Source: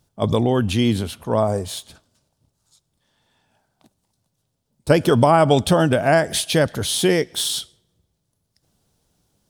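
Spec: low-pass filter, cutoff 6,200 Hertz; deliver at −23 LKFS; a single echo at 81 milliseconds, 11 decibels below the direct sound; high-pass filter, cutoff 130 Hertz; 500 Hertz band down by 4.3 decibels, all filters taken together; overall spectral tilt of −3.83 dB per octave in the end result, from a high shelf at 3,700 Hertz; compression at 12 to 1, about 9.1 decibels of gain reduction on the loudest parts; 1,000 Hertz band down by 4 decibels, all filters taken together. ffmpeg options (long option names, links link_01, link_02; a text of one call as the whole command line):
ffmpeg -i in.wav -af "highpass=130,lowpass=6200,equalizer=frequency=500:width_type=o:gain=-4.5,equalizer=frequency=1000:width_type=o:gain=-4,highshelf=frequency=3700:gain=5.5,acompressor=threshold=-22dB:ratio=12,aecho=1:1:81:0.282,volume=4dB" out.wav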